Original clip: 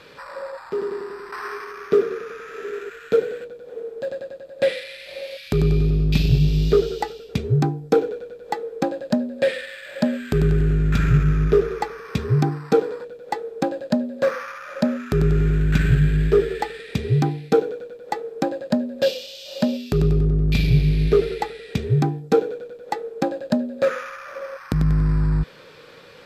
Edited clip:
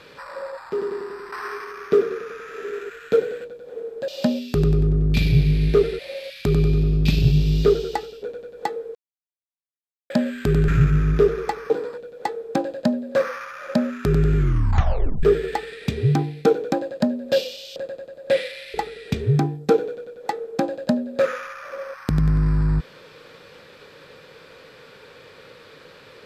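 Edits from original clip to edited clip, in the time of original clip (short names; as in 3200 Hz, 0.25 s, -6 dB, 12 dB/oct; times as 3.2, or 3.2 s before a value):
4.08–5.06 swap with 19.46–21.37
7.3–8.1 cut
8.82–9.97 mute
10.55–11.01 cut
12.03–12.77 cut
15.44 tape stop 0.86 s
17.79–18.42 cut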